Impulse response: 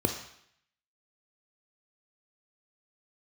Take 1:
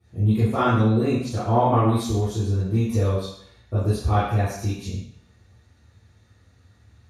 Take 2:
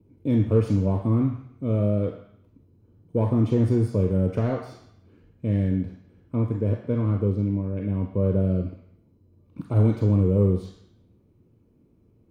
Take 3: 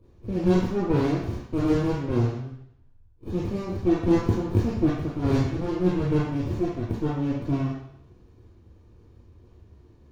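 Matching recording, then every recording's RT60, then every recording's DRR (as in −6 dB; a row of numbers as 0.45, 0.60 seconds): 2; 0.70, 0.70, 0.70 seconds; −12.5, 5.5, −4.0 decibels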